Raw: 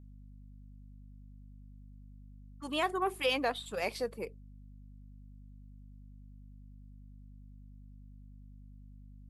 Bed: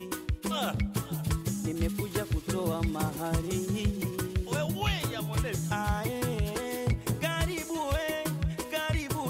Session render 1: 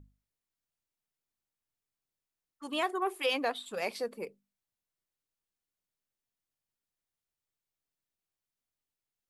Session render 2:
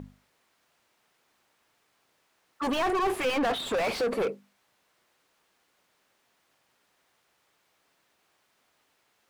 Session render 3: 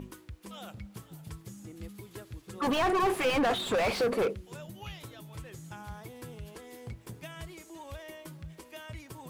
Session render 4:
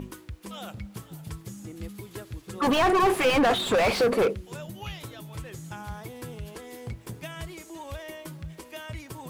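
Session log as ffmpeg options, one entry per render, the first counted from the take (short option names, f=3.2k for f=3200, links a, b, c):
-af "bandreject=f=50:t=h:w=6,bandreject=f=100:t=h:w=6,bandreject=f=150:t=h:w=6,bandreject=f=200:t=h:w=6,bandreject=f=250:t=h:w=6"
-filter_complex "[0:a]asplit=2[a][b];[b]highpass=f=720:p=1,volume=38dB,asoftclip=type=tanh:threshold=-18.5dB[c];[a][c]amix=inputs=2:normalize=0,lowpass=f=1.3k:p=1,volume=-6dB"
-filter_complex "[1:a]volume=-14dB[a];[0:a][a]amix=inputs=2:normalize=0"
-af "volume=5.5dB"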